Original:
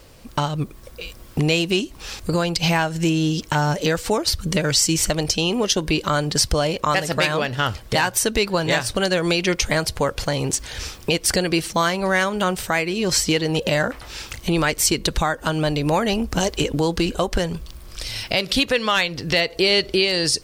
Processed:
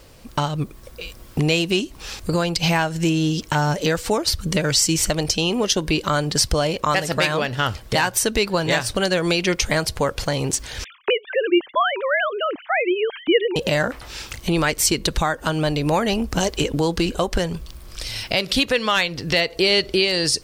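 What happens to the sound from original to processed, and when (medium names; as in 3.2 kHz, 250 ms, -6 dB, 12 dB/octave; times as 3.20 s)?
10.84–13.56 s: formants replaced by sine waves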